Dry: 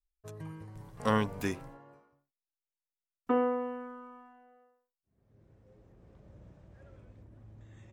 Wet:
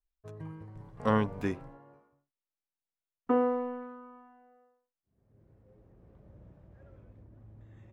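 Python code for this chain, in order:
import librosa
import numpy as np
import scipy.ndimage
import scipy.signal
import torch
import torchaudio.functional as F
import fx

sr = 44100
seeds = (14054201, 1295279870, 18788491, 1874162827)

p1 = np.sign(x) * np.maximum(np.abs(x) - 10.0 ** (-42.0 / 20.0), 0.0)
p2 = x + (p1 * librosa.db_to_amplitude(-10.5))
y = fx.lowpass(p2, sr, hz=1500.0, slope=6)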